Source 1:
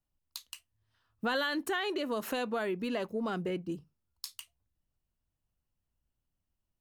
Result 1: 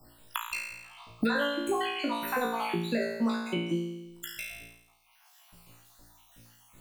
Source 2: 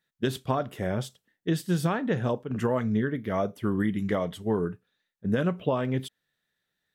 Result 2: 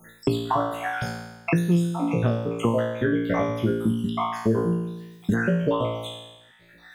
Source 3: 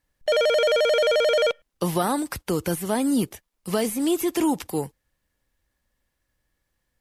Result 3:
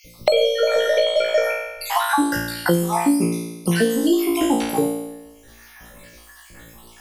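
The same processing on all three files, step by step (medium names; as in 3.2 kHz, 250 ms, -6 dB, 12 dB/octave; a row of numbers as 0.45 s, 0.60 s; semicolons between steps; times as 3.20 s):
random holes in the spectrogram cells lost 65%; flutter echo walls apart 3 m, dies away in 0.68 s; three bands compressed up and down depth 100%; trim +2.5 dB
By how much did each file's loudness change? +2.5 LU, +3.5 LU, +3.0 LU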